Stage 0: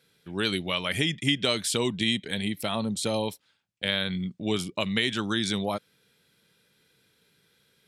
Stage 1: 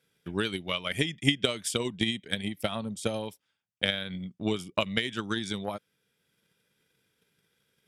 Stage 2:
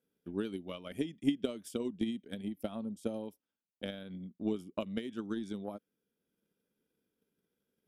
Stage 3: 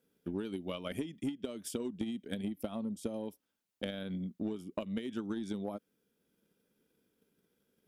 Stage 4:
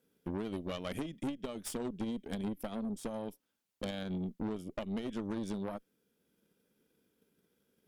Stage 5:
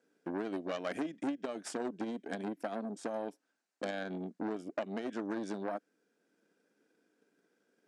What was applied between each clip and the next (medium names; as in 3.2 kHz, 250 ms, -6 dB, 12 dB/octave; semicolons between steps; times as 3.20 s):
band-stop 4.1 kHz, Q 5.8; transient shaper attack +12 dB, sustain -2 dB; trim -7 dB
graphic EQ 125/250/1000/2000/4000/8000 Hz -11/+8/-4/-11/-9/-10 dB; trim -6.5 dB
in parallel at -8 dB: hard clipper -33.5 dBFS, distortion -7 dB; on the sum: compression 12:1, threshold -37 dBFS, peak gain reduction 15 dB; trim +4 dB
valve stage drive 37 dB, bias 0.75; trim +5.5 dB
cabinet simulation 280–8300 Hz, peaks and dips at 300 Hz +6 dB, 700 Hz +7 dB, 1.6 kHz +8 dB, 3.3 kHz -7 dB; trim +1 dB